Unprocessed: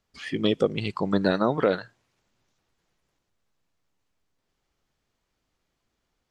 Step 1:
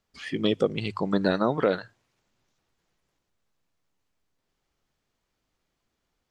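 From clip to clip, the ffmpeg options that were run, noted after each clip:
-af "bandreject=f=50:t=h:w=6,bandreject=f=100:t=h:w=6,volume=-1dB"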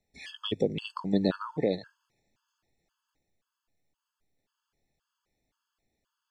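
-filter_complex "[0:a]acrossover=split=410|3000[a][b][c];[b]acompressor=threshold=-33dB:ratio=2.5[d];[a][d][c]amix=inputs=3:normalize=0,afftfilt=real='re*gt(sin(2*PI*1.9*pts/sr)*(1-2*mod(floor(b*sr/1024/870),2)),0)':imag='im*gt(sin(2*PI*1.9*pts/sr)*(1-2*mod(floor(b*sr/1024/870),2)),0)':win_size=1024:overlap=0.75"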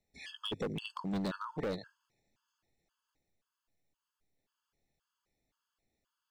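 -af "volume=28dB,asoftclip=hard,volume=-28dB,volume=-3.5dB"

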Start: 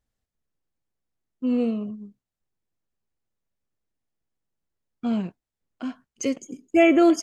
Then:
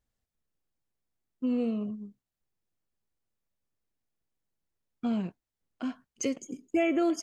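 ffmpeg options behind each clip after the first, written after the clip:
-af "acompressor=threshold=-25dB:ratio=2.5,volume=-2dB"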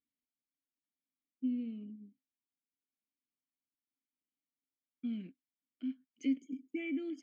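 -filter_complex "[0:a]tremolo=f=0.93:d=0.38,asplit=3[a][b][c];[a]bandpass=f=270:t=q:w=8,volume=0dB[d];[b]bandpass=f=2.29k:t=q:w=8,volume=-6dB[e];[c]bandpass=f=3.01k:t=q:w=8,volume=-9dB[f];[d][e][f]amix=inputs=3:normalize=0,volume=2dB"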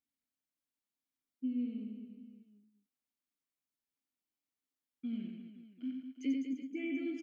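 -af "aecho=1:1:90|202.5|343.1|518.9|738.6:0.631|0.398|0.251|0.158|0.1,volume=-2dB"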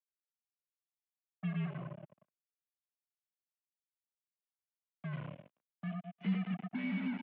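-af "acrusher=bits=6:mix=0:aa=0.5,highpass=f=240:t=q:w=0.5412,highpass=f=240:t=q:w=1.307,lowpass=f=3.1k:t=q:w=0.5176,lowpass=f=3.1k:t=q:w=0.7071,lowpass=f=3.1k:t=q:w=1.932,afreqshift=-80,volume=1.5dB"

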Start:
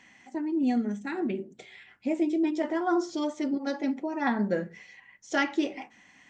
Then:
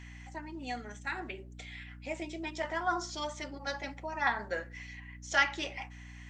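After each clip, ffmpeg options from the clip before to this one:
-af "highpass=930,aeval=exprs='val(0)+0.00316*(sin(2*PI*60*n/s)+sin(2*PI*2*60*n/s)/2+sin(2*PI*3*60*n/s)/3+sin(2*PI*4*60*n/s)/4+sin(2*PI*5*60*n/s)/5)':c=same,volume=2.5dB"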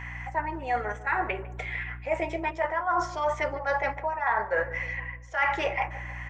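-filter_complex "[0:a]equalizer=f=125:t=o:w=1:g=5,equalizer=f=250:t=o:w=1:g=-11,equalizer=f=500:t=o:w=1:g=10,equalizer=f=1k:t=o:w=1:g=10,equalizer=f=2k:t=o:w=1:g=8,equalizer=f=4k:t=o:w=1:g=-10,equalizer=f=8k:t=o:w=1:g=-8,areverse,acompressor=threshold=-30dB:ratio=12,areverse,asplit=2[a][b];[b]adelay=151,lowpass=f=1.1k:p=1,volume=-14dB,asplit=2[c][d];[d]adelay=151,lowpass=f=1.1k:p=1,volume=0.52,asplit=2[e][f];[f]adelay=151,lowpass=f=1.1k:p=1,volume=0.52,asplit=2[g][h];[h]adelay=151,lowpass=f=1.1k:p=1,volume=0.52,asplit=2[i][j];[j]adelay=151,lowpass=f=1.1k:p=1,volume=0.52[k];[a][c][e][g][i][k]amix=inputs=6:normalize=0,volume=7dB"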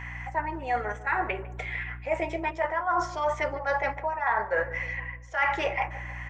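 -af anull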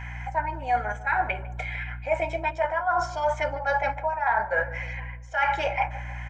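-af "aecho=1:1:1.3:0.68"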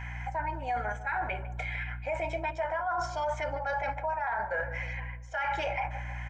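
-af "alimiter=limit=-21dB:level=0:latency=1:release=17,volume=-2.5dB"

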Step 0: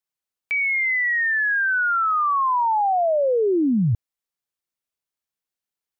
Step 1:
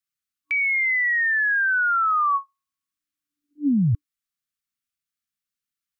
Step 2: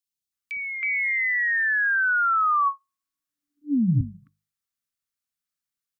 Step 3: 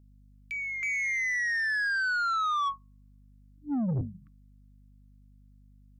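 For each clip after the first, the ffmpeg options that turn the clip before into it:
-af "afftfilt=real='re*(1-between(b*sr/4096,300,1100))':imag='im*(1-between(b*sr/4096,300,1100))':win_size=4096:overlap=0.75"
-filter_complex "[0:a]bandreject=f=50:t=h:w=6,bandreject=f=100:t=h:w=6,bandreject=f=150:t=h:w=6,bandreject=f=200:t=h:w=6,acrossover=split=380|2600[a][b][c];[a]adelay=60[d];[b]adelay=320[e];[d][e][c]amix=inputs=3:normalize=0"
-af "aeval=exprs='val(0)+0.00224*(sin(2*PI*50*n/s)+sin(2*PI*2*50*n/s)/2+sin(2*PI*3*50*n/s)/3+sin(2*PI*4*50*n/s)/4+sin(2*PI*5*50*n/s)/5)':c=same,asoftclip=type=tanh:threshold=-23dB,volume=-2.5dB"

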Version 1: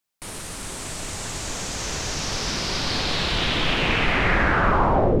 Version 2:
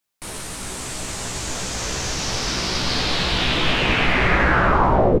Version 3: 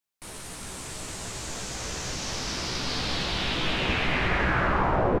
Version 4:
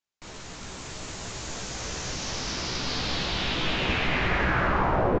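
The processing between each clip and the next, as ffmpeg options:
-filter_complex "[0:a]asplit=2[a][b];[b]adelay=16,volume=-5dB[c];[a][c]amix=inputs=2:normalize=0,volume=1.5dB"
-filter_complex "[0:a]asplit=6[a][b][c][d][e][f];[b]adelay=223,afreqshift=71,volume=-7dB[g];[c]adelay=446,afreqshift=142,volume=-14.3dB[h];[d]adelay=669,afreqshift=213,volume=-21.7dB[i];[e]adelay=892,afreqshift=284,volume=-29dB[j];[f]adelay=1115,afreqshift=355,volume=-36.3dB[k];[a][g][h][i][j][k]amix=inputs=6:normalize=0,volume=-8.5dB"
-af "aresample=16000,aresample=44100"

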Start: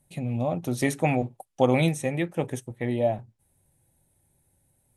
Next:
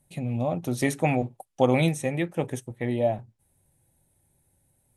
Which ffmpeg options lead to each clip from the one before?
-af anull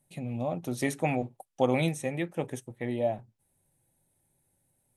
-af "equalizer=f=62:t=o:w=1.1:g=-11.5,volume=-4dB"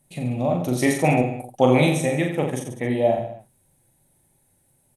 -af "aecho=1:1:40|86|138.9|199.7|269.7:0.631|0.398|0.251|0.158|0.1,volume=7.5dB"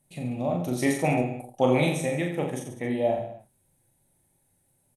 -filter_complex "[0:a]asplit=2[a][b];[b]adelay=29,volume=-10.5dB[c];[a][c]amix=inputs=2:normalize=0,volume=-5.5dB"

